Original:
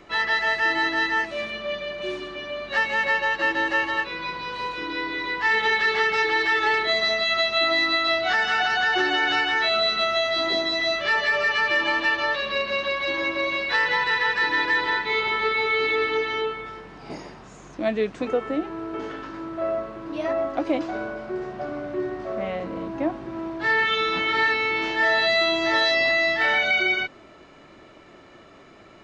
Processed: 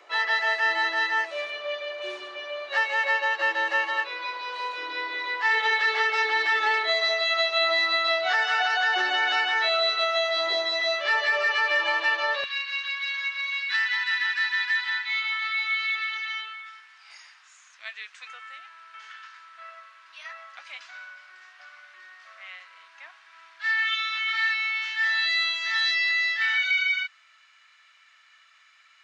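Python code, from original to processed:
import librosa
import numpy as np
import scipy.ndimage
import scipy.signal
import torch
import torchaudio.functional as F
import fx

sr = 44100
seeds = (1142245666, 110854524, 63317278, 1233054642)

y = fx.highpass(x, sr, hz=fx.steps((0.0, 490.0), (12.44, 1500.0)), slope=24)
y = y * 10.0 ** (-1.5 / 20.0)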